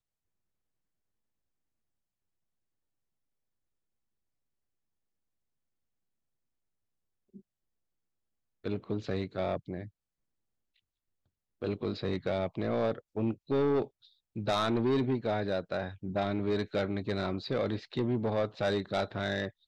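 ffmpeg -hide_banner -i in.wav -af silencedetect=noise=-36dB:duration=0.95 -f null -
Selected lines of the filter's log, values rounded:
silence_start: 0.00
silence_end: 8.66 | silence_duration: 8.66
silence_start: 9.84
silence_end: 11.62 | silence_duration: 1.78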